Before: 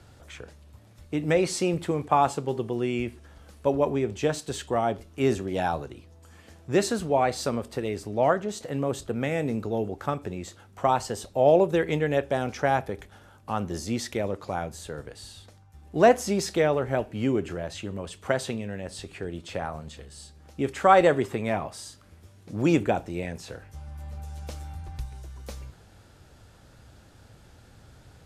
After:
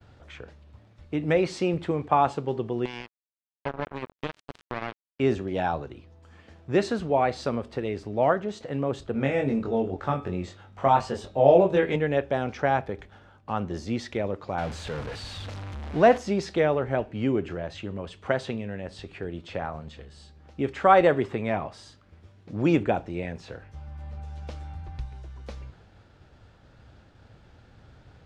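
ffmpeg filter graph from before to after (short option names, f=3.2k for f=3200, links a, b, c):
-filter_complex "[0:a]asettb=1/sr,asplit=3[a][b][c];[a]atrim=end=2.854[d];[b]atrim=start=2.85:end=5.2,asetpts=PTS-STARTPTS,afade=t=in:d=0.004:c=qsin,afade=t=out:st=2.346:d=0.004:c=qsin,bandreject=f=60:t=h:w=6,bandreject=f=120:t=h:w=6,acompressor=threshold=-28dB:ratio=2.5:attack=3.2:release=140:knee=1:detection=peak,acrusher=bits=3:mix=0:aa=0.5[e];[c]atrim=start=5.196[f];[d][e]acrossfade=d=0.004:c1=hsin:c2=qsin[g];[g][f]acrossfade=d=0.004:c1=qsin:c2=hsin,asettb=1/sr,asplit=3[h][i][j];[h]atrim=end=9.124[k];[i]atrim=start=9.12:end=11.96,asetpts=PTS-STARTPTS,afade=t=in:d=0.004:c=qsin,afade=t=out:st=2.836:d=0.004:c=qsin,asplit=2[l][m];[m]adelay=22,volume=-2dB[n];[l][n]amix=inputs=2:normalize=0,atrim=end_sample=125244,bandreject=f=106.2:t=h:w=4,bandreject=f=212.4:t=h:w=4,bandreject=f=318.6:t=h:w=4,bandreject=f=424.8:t=h:w=4,bandreject=f=531:t=h:w=4,bandreject=f=637.2:t=h:w=4,bandreject=f=743.4:t=h:w=4,bandreject=f=849.6:t=h:w=4,bandreject=f=955.8:t=h:w=4,bandreject=f=1.062k:t=h:w=4,bandreject=f=1.1682k:t=h:w=4,bandreject=f=1.2744k:t=h:w=4,bandreject=f=1.3806k:t=h:w=4,bandreject=f=1.4868k:t=h:w=4,bandreject=f=1.593k:t=h:w=4,bandreject=f=1.6992k:t=h:w=4,bandreject=f=1.8054k:t=h:w=4,bandreject=f=1.9116k:t=h:w=4,bandreject=f=2.0178k:t=h:w=4,bandreject=f=2.124k:t=h:w=4,bandreject=f=2.2302k:t=h:w=4,bandreject=f=2.3364k:t=h:w=4,bandreject=f=2.4426k:t=h:w=4,bandreject=f=2.5488k:t=h:w=4,bandreject=f=2.655k:t=h:w=4,bandreject=f=2.7612k:t=h:w=4,bandreject=f=2.8674k:t=h:w=4,bandreject=f=2.9736k:t=h:w=4,bandreject=f=3.0798k:t=h:w=4,bandreject=f=3.186k:t=h:w=4,bandreject=f=3.2922k:t=h:w=4,bandreject=f=3.3984k:t=h:w=4,bandreject=f=3.5046k:t=h:w=4,bandreject=f=3.6108k:t=h:w=4,bandreject=f=3.717k:t=h:w=4,bandreject=f=3.8232k:t=h:w=4[o];[j]atrim=start=11.956[p];[k][o]acrossfade=d=0.004:c1=hsin:c2=qsin[q];[q][p]acrossfade=d=0.004:c1=qsin:c2=hsin,asettb=1/sr,asplit=3[r][s][t];[r]atrim=end=14.584[u];[s]atrim=start=14.58:end=16.18,asetpts=PTS-STARTPTS,afade=t=in:d=0.004:c=qsin,afade=t=out:st=1.596:d=0.004:c=qsin,aeval=exprs='val(0)+0.5*0.0282*sgn(val(0))':c=same,equalizer=f=370:w=3.6:g=-4.5[v];[t]atrim=start=16.176[w];[u][v]acrossfade=d=0.004:c1=hsin:c2=qsin[x];[x][w]acrossfade=d=0.004:c1=qsin:c2=hsin,lowpass=3.8k,agate=range=-33dB:threshold=-51dB:ratio=3:detection=peak"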